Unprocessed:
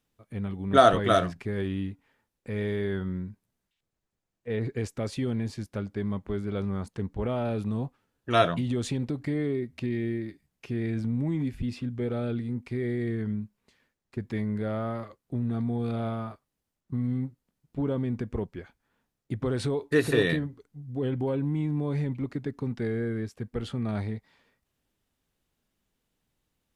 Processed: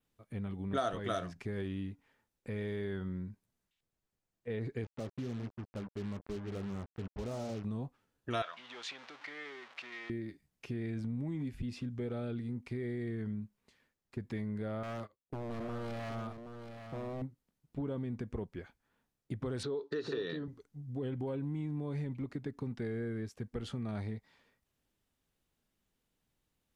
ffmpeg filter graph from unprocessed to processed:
-filter_complex "[0:a]asettb=1/sr,asplit=3[s0][s1][s2];[s0]atrim=end=4.844[s3];[s1]atrim=start=4.84:end=7.64,asetpts=PTS-STARTPTS,afade=t=in:d=0.004:c=qsin,afade=t=out:st=2.796:d=0.004:c=qsin,lowpass=1100,flanger=delay=1.6:depth=8:regen=-65:speed=1.2:shape=triangular,acrusher=bits=6:mix=0:aa=0.5[s4];[s2]atrim=start=7.636[s5];[s3][s4]acrossfade=d=0.004:c1=hsin:c2=qsin[s6];[s6][s5]acrossfade=d=0.004:c1=qsin:c2=hsin,asettb=1/sr,asplit=3[s7][s8][s9];[s7]atrim=end=8.424[s10];[s8]atrim=start=8.42:end=10.1,asetpts=PTS-STARTPTS,afade=t=in:d=0.004:c=qsin,afade=t=out:st=1.676:d=0.004:c=qsin,aeval=exprs='val(0)+0.5*0.015*sgn(val(0))':c=same,asuperpass=centerf=1900:order=4:qfactor=0.65[s11];[s9]atrim=start=10.096[s12];[s10][s11]acrossfade=d=0.004:c1=hsin:c2=qsin[s13];[s13][s12]acrossfade=d=0.004:c1=qsin:c2=hsin,asettb=1/sr,asplit=3[s14][s15][s16];[s14]atrim=end=14.834[s17];[s15]atrim=start=14.83:end=17.22,asetpts=PTS-STARTPTS,afade=t=in:d=0.004:c=qsin,afade=t=out:st=2.386:d=0.004:c=qsin,agate=range=0.126:threshold=0.00794:ratio=16:release=100:detection=peak,aeval=exprs='0.0355*(abs(mod(val(0)/0.0355+3,4)-2)-1)':c=same,aecho=1:1:775:0.335,atrim=end_sample=105399[s18];[s16]atrim=start=17.216[s19];[s17][s18]acrossfade=d=0.004:c1=hsin:c2=qsin[s20];[s20][s19]acrossfade=d=0.004:c1=qsin:c2=hsin,asettb=1/sr,asplit=3[s21][s22][s23];[s21]atrim=end=19.634[s24];[s22]atrim=start=19.63:end=20.48,asetpts=PTS-STARTPTS,afade=t=in:d=0.004:c=qsin,afade=t=out:st=0.846:d=0.004:c=qsin,acompressor=threshold=0.0447:ratio=2.5:attack=3.2:release=140:knee=1:detection=peak,highpass=180,equalizer=f=410:t=q:w=4:g=7,equalizer=f=690:t=q:w=4:g=-4,equalizer=f=1300:t=q:w=4:g=5,equalizer=f=2200:t=q:w=4:g=-9,equalizer=f=4100:t=q:w=4:g=6,lowpass=f=5200:w=0.5412,lowpass=f=5200:w=1.3066[s25];[s23]atrim=start=20.476[s26];[s24][s25]acrossfade=d=0.004:c1=hsin:c2=qsin[s27];[s27][s26]acrossfade=d=0.004:c1=qsin:c2=hsin,adynamicequalizer=threshold=0.00141:dfrequency=6000:dqfactor=2.3:tfrequency=6000:tqfactor=2.3:attack=5:release=100:ratio=0.375:range=2.5:mode=boostabove:tftype=bell,acompressor=threshold=0.0224:ratio=2.5,volume=0.668"

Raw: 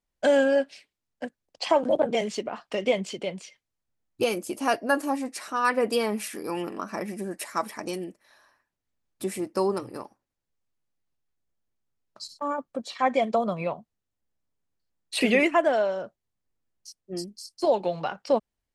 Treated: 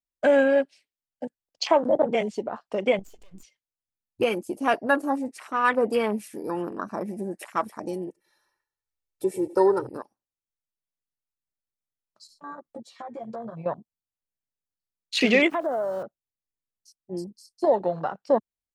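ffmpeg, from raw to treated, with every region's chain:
-filter_complex "[0:a]asettb=1/sr,asplit=3[s0][s1][s2];[s0]atrim=end=2.994[s3];[s1]atrim=start=2.99:end=3.43,asetpts=PTS-STARTPTS,afade=t=in:d=0.004:c=qsin,afade=t=out:st=0.436:d=0.004:c=qsin,equalizer=f=7000:t=o:w=0.57:g=13.5,acompressor=threshold=0.0158:ratio=16:attack=3.2:release=140:knee=1:detection=peak,aeval=exprs='max(val(0),0)':c=same[s4];[s2]atrim=start=3.426[s5];[s3][s4]acrossfade=d=0.004:c1=hsin:c2=qsin[s6];[s6][s5]acrossfade=d=0.004:c1=qsin:c2=hsin,asettb=1/sr,asplit=3[s7][s8][s9];[s7]atrim=end=8.074[s10];[s8]atrim=start=8.07:end=9.87,asetpts=PTS-STARTPTS,afade=t=in:d=0.004:c=qsin,afade=t=out:st=1.796:d=0.004:c=qsin,aecho=1:1:2.2:0.95,atrim=end_sample=79380,aecho=1:1:95|190|285|380|475:0.106|0.0614|0.0356|0.0207|0.012,atrim=end_sample=79380[s11];[s9]atrim=start=9.866[s12];[s10][s11]acrossfade=d=0.004:c1=hsin:c2=qsin[s13];[s13][s12]acrossfade=d=0.004:c1=qsin:c2=hsin,asettb=1/sr,asplit=3[s14][s15][s16];[s14]atrim=end=12.274[s17];[s15]atrim=start=12.27:end=13.66,asetpts=PTS-STARTPTS,afade=t=in:d=0.004:c=qsin,afade=t=out:st=1.386:d=0.004:c=qsin,acompressor=threshold=0.0158:ratio=16:attack=3.2:release=140:knee=1:detection=peak,asplit=2[s18][s19];[s19]adelay=13,volume=0.631[s20];[s18][s20]amix=inputs=2:normalize=0,atrim=end_sample=61299[s21];[s16]atrim=start=13.656[s22];[s17][s21]acrossfade=d=0.004:c1=hsin:c2=qsin[s23];[s23][s22]acrossfade=d=0.004:c1=qsin:c2=hsin,asettb=1/sr,asplit=3[s24][s25][s26];[s24]atrim=end=15.504[s27];[s25]atrim=start=15.5:end=16.03,asetpts=PTS-STARTPTS,afade=t=in:d=0.004:c=qsin,afade=t=out:st=0.526:d=0.004:c=qsin,highpass=110,lowpass=2000,aeval=exprs='val(0)*gte(abs(val(0)),0.015)':c=same,acompressor=threshold=0.0501:ratio=3:attack=3.2:release=140:knee=1:detection=peak[s28];[s26]atrim=start=16.026[s29];[s27][s28]acrossfade=d=0.004:c1=hsin:c2=qsin[s30];[s30][s29]acrossfade=d=0.004:c1=qsin:c2=hsin,afwtdn=0.0178,highshelf=f=4700:g=7.5,volume=1.19"

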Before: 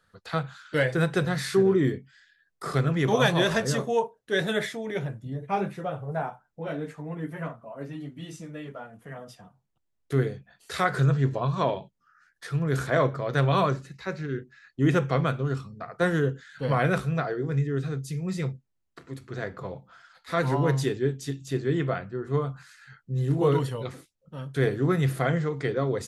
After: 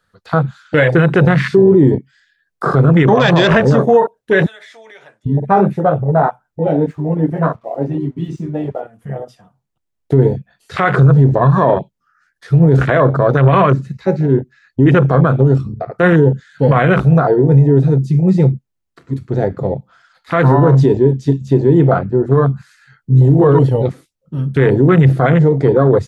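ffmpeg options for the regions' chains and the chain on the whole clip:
-filter_complex "[0:a]asettb=1/sr,asplit=3[s0][s1][s2];[s0]atrim=end=4.464[s3];[s1]atrim=start=4.46:end=5.26,asetpts=PTS-STARTPTS,afade=t=in:d=0.004:c=qsin,afade=t=out:st=0.796:d=0.004:c=qsin,highpass=760,lowpass=7600,acompressor=threshold=0.0141:ratio=10:attack=3.2:release=140:knee=1:detection=peak[s4];[s2]atrim=start=5.256[s5];[s3][s4]acrossfade=d=0.004:c1=hsin:c2=qsin[s6];[s6][s5]acrossfade=d=0.004:c1=qsin:c2=hsin,asettb=1/sr,asplit=3[s7][s8][s9];[s7]atrim=end=6.744[s10];[s8]atrim=start=6.74:end=8.81,asetpts=PTS-STARTPTS,afade=t=in:d=0.004:c=qsin,afade=t=out:st=2.066:d=0.004:c=qsin,lowpass=7400,equalizer=f=980:t=o:w=0.78:g=5,aeval=exprs='sgn(val(0))*max(abs(val(0))-0.001,0)':c=same[s11];[s9]atrim=start=8.806[s12];[s10][s11]acrossfade=d=0.004:c1=hsin:c2=qsin[s13];[s13][s12]acrossfade=d=0.004:c1=qsin:c2=hsin,acrossover=split=6000[s14][s15];[s15]acompressor=threshold=0.00141:ratio=4:attack=1:release=60[s16];[s14][s16]amix=inputs=2:normalize=0,afwtdn=0.0282,alimiter=level_in=10:limit=0.891:release=50:level=0:latency=1,volume=0.891"

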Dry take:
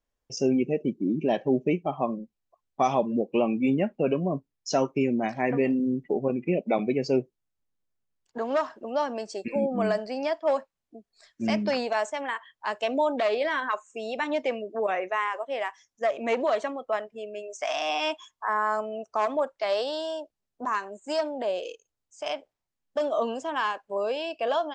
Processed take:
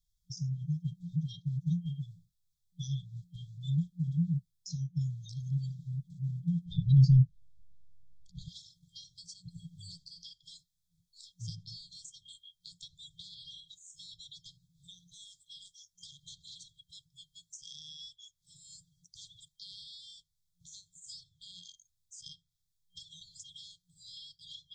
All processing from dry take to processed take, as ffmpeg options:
-filter_complex "[0:a]asettb=1/sr,asplit=3[s0][s1][s2];[s0]atrim=end=6.664[s3];[s1]atrim=start=6.66:end=8.48,asetpts=PTS-STARTPTS,afade=t=in:d=0.004:c=qsin,afade=t=out:st=1.816:d=0.004:c=qsin,aemphasis=mode=reproduction:type=bsi,acontrast=64[s4];[s2]atrim=start=8.476[s5];[s3][s4]acrossfade=d=0.004:c1=hsin:c2=qsin[s6];[s6][s5]acrossfade=d=0.004:c1=qsin:c2=hsin,afftfilt=real='re*(1-between(b*sr/4096,180,3200))':imag='im*(1-between(b*sr/4096,180,3200))':win_size=4096:overlap=0.75,acrossover=split=390[s7][s8];[s8]acompressor=threshold=0.00224:ratio=5[s9];[s7][s9]amix=inputs=2:normalize=0,volume=1.88"

